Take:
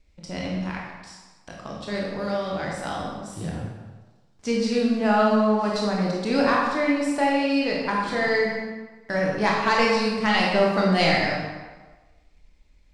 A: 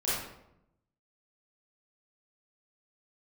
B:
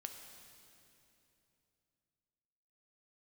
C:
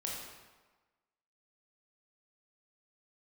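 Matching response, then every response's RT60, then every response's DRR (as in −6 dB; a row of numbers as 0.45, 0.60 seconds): C; 0.80, 3.0, 1.3 seconds; −10.5, 4.0, −3.0 decibels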